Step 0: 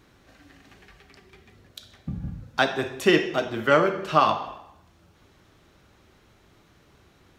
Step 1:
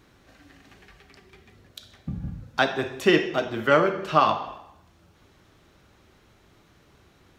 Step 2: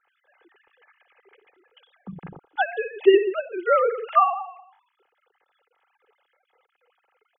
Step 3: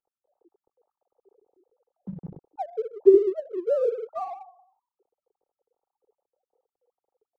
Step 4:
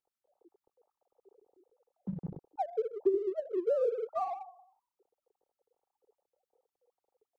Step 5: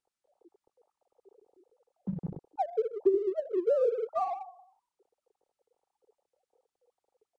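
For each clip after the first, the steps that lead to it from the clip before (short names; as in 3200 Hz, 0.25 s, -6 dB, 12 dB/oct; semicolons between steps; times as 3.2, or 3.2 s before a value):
dynamic EQ 10000 Hz, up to -5 dB, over -49 dBFS, Q 0.81
sine-wave speech; comb 2.4 ms, depth 53%
Gaussian blur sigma 14 samples; in parallel at -8 dB: crossover distortion -42.5 dBFS
compressor 6:1, threshold -25 dBFS, peak gain reduction 15 dB; gain -1 dB
downsampling 22050 Hz; gain +3 dB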